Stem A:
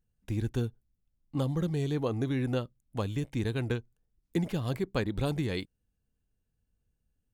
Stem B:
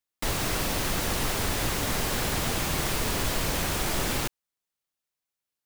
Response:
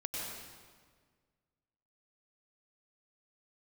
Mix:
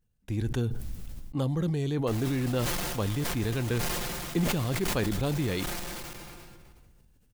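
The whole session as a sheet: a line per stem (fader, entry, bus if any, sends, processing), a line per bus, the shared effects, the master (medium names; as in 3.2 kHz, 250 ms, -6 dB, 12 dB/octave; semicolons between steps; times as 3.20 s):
+0.5 dB, 0.00 s, no send, none
-12.5 dB, 1.85 s, send -17.5 dB, comb 5.7 ms, depth 85%; saturation -29 dBFS, distortion -8 dB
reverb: on, RT60 1.7 s, pre-delay 89 ms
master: decay stretcher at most 20 dB/s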